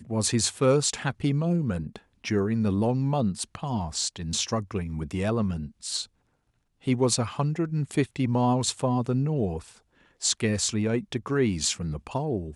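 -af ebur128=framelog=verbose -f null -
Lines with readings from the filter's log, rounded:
Integrated loudness:
  I:         -26.8 LUFS
  Threshold: -37.0 LUFS
Loudness range:
  LRA:         3.3 LU
  Threshold: -47.5 LUFS
  LRA low:   -29.5 LUFS
  LRA high:  -26.2 LUFS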